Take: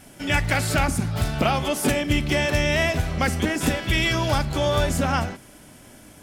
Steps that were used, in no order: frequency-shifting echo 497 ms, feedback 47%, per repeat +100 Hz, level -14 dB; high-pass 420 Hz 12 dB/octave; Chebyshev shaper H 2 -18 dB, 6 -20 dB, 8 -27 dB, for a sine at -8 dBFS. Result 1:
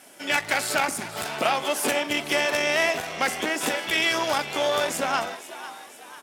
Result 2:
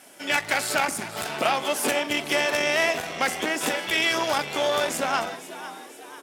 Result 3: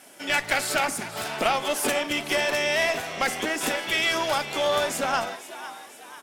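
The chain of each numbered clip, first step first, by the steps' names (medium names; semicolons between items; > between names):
Chebyshev shaper > high-pass > frequency-shifting echo; frequency-shifting echo > Chebyshev shaper > high-pass; high-pass > frequency-shifting echo > Chebyshev shaper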